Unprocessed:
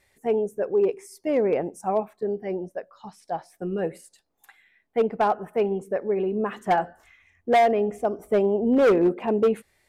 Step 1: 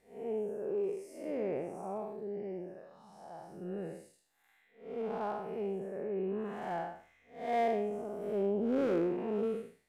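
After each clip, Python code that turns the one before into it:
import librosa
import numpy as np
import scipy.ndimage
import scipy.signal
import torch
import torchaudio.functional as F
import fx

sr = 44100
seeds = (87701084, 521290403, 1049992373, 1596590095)

y = fx.spec_blur(x, sr, span_ms=229.0)
y = F.gain(torch.from_numpy(y), -8.0).numpy()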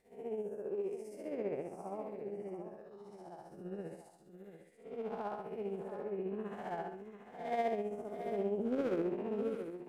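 y = x * (1.0 - 0.51 / 2.0 + 0.51 / 2.0 * np.cos(2.0 * np.pi * 15.0 * (np.arange(len(x)) / sr)))
y = y + 10.0 ** (-10.0 / 20.0) * np.pad(y, (int(685 * sr / 1000.0), 0))[:len(y)]
y = F.gain(torch.from_numpy(y), -1.5).numpy()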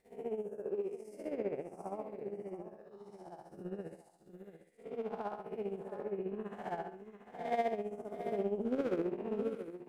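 y = fx.transient(x, sr, attack_db=6, sustain_db=-5)
y = F.gain(torch.from_numpy(y), -1.0).numpy()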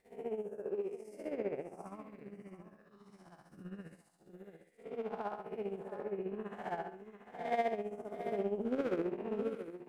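y = fx.spec_box(x, sr, start_s=1.85, length_s=2.34, low_hz=320.0, high_hz=990.0, gain_db=-11)
y = fx.peak_eq(y, sr, hz=1800.0, db=3.5, octaves=2.0)
y = F.gain(torch.from_numpy(y), -1.0).numpy()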